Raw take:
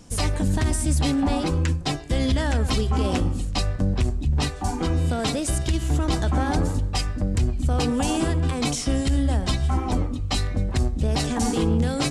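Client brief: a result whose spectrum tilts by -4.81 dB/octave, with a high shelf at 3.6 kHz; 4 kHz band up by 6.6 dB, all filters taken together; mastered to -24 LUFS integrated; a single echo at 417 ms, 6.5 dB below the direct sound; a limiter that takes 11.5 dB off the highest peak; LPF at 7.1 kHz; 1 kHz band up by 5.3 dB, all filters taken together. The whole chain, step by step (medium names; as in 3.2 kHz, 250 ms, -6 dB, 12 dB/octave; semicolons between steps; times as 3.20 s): low-pass 7.1 kHz; peaking EQ 1 kHz +6.5 dB; treble shelf 3.6 kHz +6.5 dB; peaking EQ 4 kHz +4 dB; peak limiter -19.5 dBFS; delay 417 ms -6.5 dB; trim +3.5 dB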